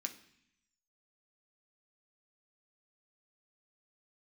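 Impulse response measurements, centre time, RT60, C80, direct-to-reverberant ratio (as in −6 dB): 9 ms, 0.65 s, 16.5 dB, 4.0 dB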